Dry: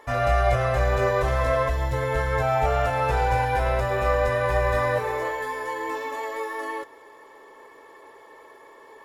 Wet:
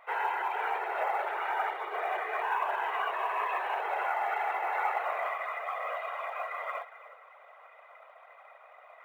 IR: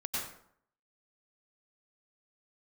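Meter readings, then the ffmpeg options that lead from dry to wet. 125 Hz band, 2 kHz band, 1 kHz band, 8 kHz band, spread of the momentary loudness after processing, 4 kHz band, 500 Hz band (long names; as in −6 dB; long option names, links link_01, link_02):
below −40 dB, −5.5 dB, −4.5 dB, below −15 dB, 6 LU, −8.0 dB, −14.0 dB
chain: -filter_complex "[0:a]asplit=2[link_01][link_02];[1:a]atrim=start_sample=2205,highshelf=frequency=2700:gain=-6.5,adelay=145[link_03];[link_02][link_03]afir=irnorm=-1:irlink=0,volume=-14.5dB[link_04];[link_01][link_04]amix=inputs=2:normalize=0,alimiter=limit=-15.5dB:level=0:latency=1:release=73,afftfilt=real='hypot(re,im)*cos(2*PI*random(0))':imag='hypot(re,im)*sin(2*PI*random(1))':win_size=512:overlap=0.75,highpass=frequency=220:width_type=q:width=0.5412,highpass=frequency=220:width_type=q:width=1.307,lowpass=frequency=3100:width_type=q:width=0.5176,lowpass=frequency=3100:width_type=q:width=0.7071,lowpass=frequency=3100:width_type=q:width=1.932,afreqshift=230,acrusher=bits=9:mode=log:mix=0:aa=0.000001"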